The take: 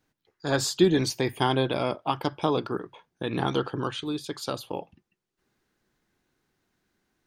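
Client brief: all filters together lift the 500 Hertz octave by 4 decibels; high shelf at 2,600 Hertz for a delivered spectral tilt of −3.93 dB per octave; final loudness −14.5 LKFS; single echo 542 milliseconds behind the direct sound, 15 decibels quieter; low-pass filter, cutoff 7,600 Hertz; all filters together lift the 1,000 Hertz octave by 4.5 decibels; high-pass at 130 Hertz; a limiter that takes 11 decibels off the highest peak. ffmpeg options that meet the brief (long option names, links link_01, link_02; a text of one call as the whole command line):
ffmpeg -i in.wav -af "highpass=130,lowpass=7600,equalizer=frequency=500:width_type=o:gain=4.5,equalizer=frequency=1000:width_type=o:gain=3.5,highshelf=frequency=2600:gain=5,alimiter=limit=-17dB:level=0:latency=1,aecho=1:1:542:0.178,volume=14.5dB" out.wav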